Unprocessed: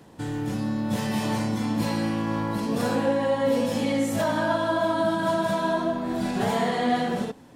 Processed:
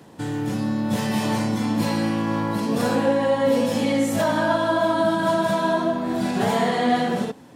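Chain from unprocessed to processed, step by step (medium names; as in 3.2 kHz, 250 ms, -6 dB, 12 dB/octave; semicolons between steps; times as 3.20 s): high-pass 91 Hz; trim +3.5 dB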